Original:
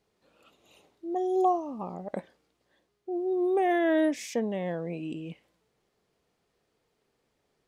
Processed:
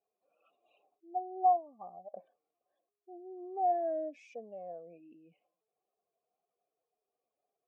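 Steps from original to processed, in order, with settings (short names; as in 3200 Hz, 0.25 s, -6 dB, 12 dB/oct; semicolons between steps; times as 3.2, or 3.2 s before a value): spectral contrast raised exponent 1.8; vowel filter a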